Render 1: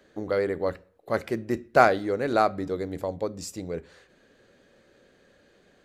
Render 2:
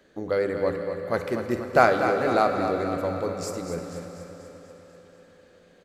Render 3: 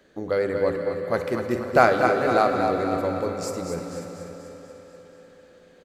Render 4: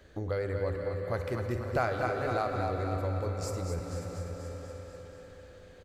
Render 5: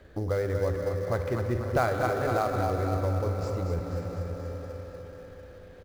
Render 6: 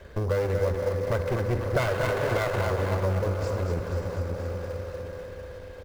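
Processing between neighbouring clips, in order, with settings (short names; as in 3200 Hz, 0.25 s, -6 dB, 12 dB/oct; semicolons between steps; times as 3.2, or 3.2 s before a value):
feedback echo 0.243 s, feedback 56%, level -9 dB; on a send at -6 dB: reverb RT60 4.7 s, pre-delay 3 ms
tapped delay 0.235/0.543 s -10/-15.5 dB; gain +1 dB
resonant low shelf 130 Hz +13 dB, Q 1.5; compressor 2:1, threshold -36 dBFS, peak gain reduction 13.5 dB
air absorption 150 m; in parallel at -9 dB: sample-rate reducer 5500 Hz, jitter 20%; on the sum: gain +2 dB
minimum comb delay 1.9 ms; in parallel at +2 dB: compressor, threshold -37 dBFS, peak gain reduction 14.5 dB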